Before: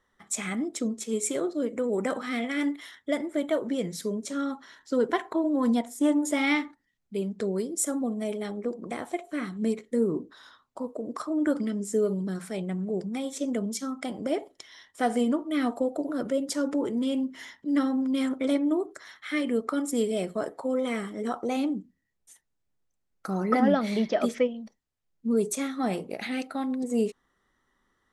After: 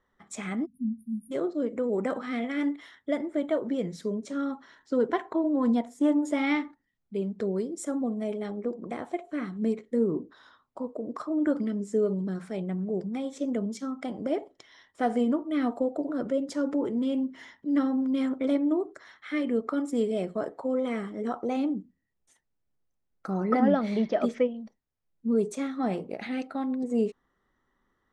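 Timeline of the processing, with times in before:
0:00.66–0:01.32: time-frequency box erased 270–9,500 Hz
whole clip: low-pass filter 7,600 Hz 12 dB per octave; high-shelf EQ 2,200 Hz −9 dB

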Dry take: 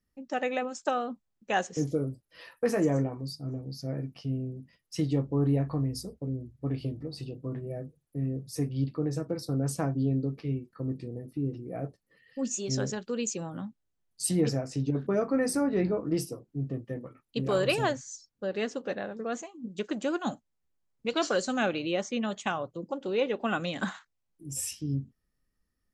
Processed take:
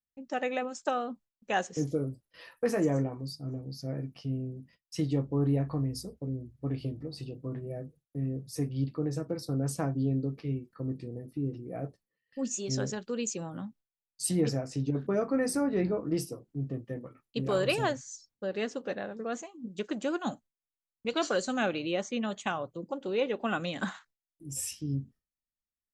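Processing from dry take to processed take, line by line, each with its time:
0:20.16–0:23.81: notch filter 5,300 Hz
whole clip: noise gate with hold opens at −52 dBFS; level −1.5 dB

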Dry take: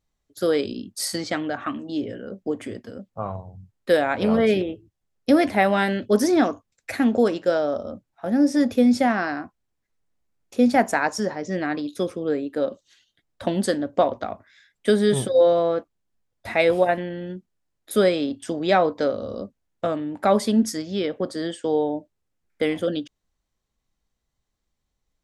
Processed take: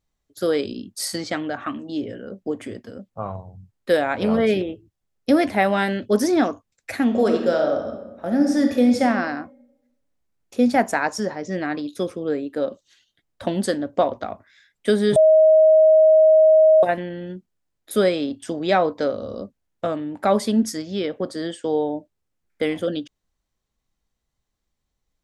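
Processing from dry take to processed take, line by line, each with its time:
0:07.04–0:09.02: thrown reverb, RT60 1 s, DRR 3 dB
0:15.16–0:16.83: beep over 630 Hz −9.5 dBFS

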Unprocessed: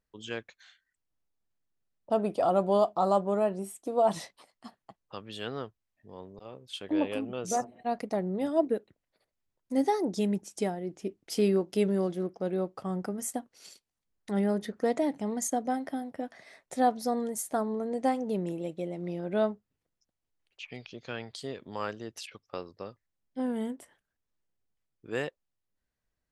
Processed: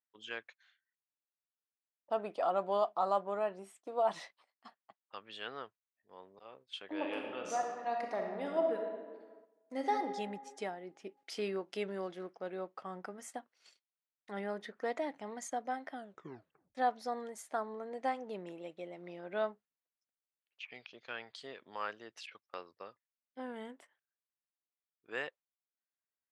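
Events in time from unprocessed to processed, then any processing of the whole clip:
0:06.94–0:09.92: thrown reverb, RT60 1.7 s, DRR 1.5 dB
0:11.17–0:12.36: one half of a high-frequency compander encoder only
0:15.94: tape stop 0.81 s
whole clip: noise gate −49 dBFS, range −9 dB; low-pass filter 1,700 Hz 12 dB per octave; first difference; level +14 dB

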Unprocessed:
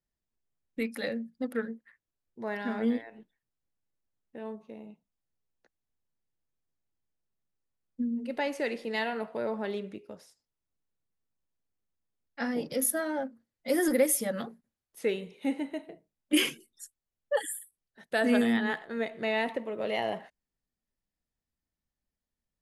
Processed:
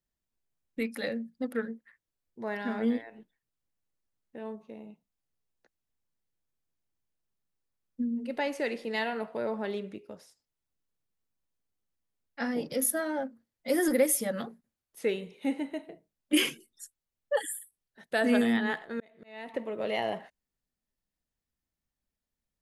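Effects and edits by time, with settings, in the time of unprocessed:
0:18.61–0:19.54: volume swells 793 ms

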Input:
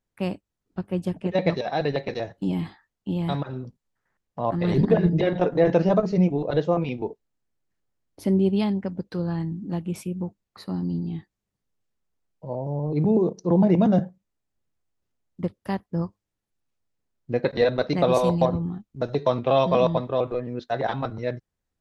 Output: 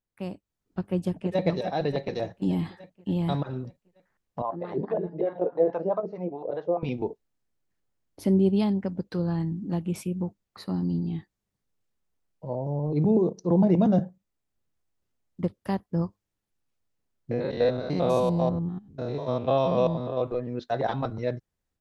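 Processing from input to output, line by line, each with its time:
0:01.01–0:01.44: delay throw 290 ms, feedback 65%, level −9.5 dB
0:04.42–0:06.83: LFO wah 4.7 Hz 420–1,100 Hz, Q 2
0:17.31–0:20.22: spectrum averaged block by block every 100 ms
whole clip: dynamic equaliser 2,100 Hz, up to −5 dB, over −41 dBFS, Q 0.8; automatic gain control gain up to 8 dB; level −8 dB

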